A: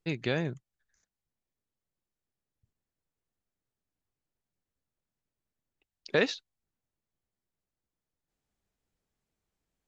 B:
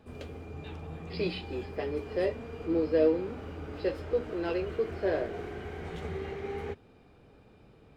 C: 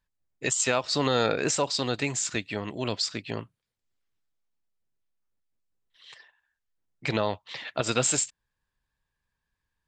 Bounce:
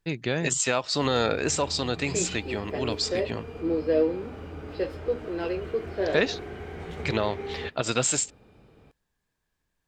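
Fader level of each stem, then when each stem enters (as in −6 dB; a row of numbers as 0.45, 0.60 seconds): +2.5, +1.5, 0.0 decibels; 0.00, 0.95, 0.00 seconds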